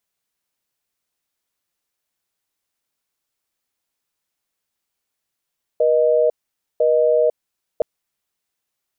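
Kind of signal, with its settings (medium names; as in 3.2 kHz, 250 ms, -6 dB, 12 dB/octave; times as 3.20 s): call progress tone busy tone, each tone -15.5 dBFS 2.02 s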